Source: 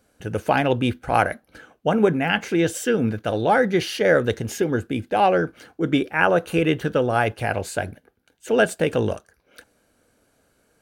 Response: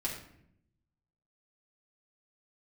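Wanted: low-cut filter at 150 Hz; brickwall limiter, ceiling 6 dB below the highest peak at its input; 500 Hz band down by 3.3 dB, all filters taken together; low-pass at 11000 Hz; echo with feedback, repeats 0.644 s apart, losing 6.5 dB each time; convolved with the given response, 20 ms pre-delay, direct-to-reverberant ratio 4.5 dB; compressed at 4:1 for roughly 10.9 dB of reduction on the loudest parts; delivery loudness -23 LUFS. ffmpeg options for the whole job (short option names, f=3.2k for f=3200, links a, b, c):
-filter_complex "[0:a]highpass=150,lowpass=11k,equalizer=f=500:t=o:g=-4,acompressor=threshold=-28dB:ratio=4,alimiter=limit=-20dB:level=0:latency=1,aecho=1:1:644|1288|1932|2576|3220|3864:0.473|0.222|0.105|0.0491|0.0231|0.0109,asplit=2[a][b];[1:a]atrim=start_sample=2205,adelay=20[c];[b][c]afir=irnorm=-1:irlink=0,volume=-7.5dB[d];[a][d]amix=inputs=2:normalize=0,volume=8dB"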